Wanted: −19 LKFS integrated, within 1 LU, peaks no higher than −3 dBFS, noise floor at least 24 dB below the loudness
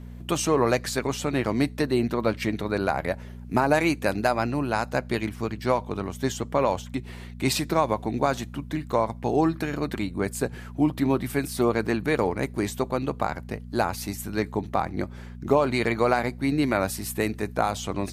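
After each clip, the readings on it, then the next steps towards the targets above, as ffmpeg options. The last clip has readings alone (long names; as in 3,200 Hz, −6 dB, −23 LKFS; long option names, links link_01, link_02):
mains hum 60 Hz; hum harmonics up to 240 Hz; level of the hum −38 dBFS; integrated loudness −26.0 LKFS; sample peak −7.0 dBFS; target loudness −19.0 LKFS
→ -af "bandreject=frequency=60:width_type=h:width=4,bandreject=frequency=120:width_type=h:width=4,bandreject=frequency=180:width_type=h:width=4,bandreject=frequency=240:width_type=h:width=4"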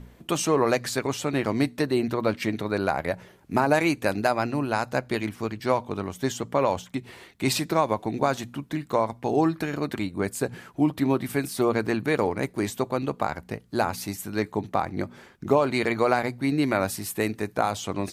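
mains hum none found; integrated loudness −26.5 LKFS; sample peak −7.0 dBFS; target loudness −19.0 LKFS
→ -af "volume=7.5dB,alimiter=limit=-3dB:level=0:latency=1"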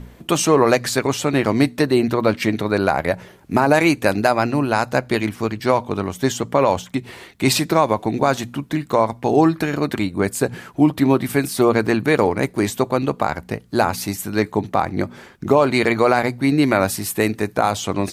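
integrated loudness −19.0 LKFS; sample peak −3.0 dBFS; background noise floor −47 dBFS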